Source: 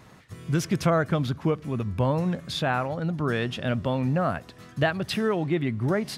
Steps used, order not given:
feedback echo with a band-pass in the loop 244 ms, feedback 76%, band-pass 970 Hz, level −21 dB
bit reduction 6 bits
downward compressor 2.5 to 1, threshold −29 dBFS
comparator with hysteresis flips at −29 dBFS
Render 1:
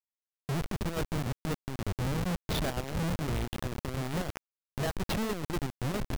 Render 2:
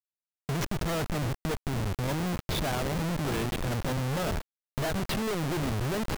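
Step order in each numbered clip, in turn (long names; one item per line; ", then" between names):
downward compressor, then feedback echo with a band-pass in the loop, then comparator with hysteresis, then bit reduction
comparator with hysteresis, then feedback echo with a band-pass in the loop, then bit reduction, then downward compressor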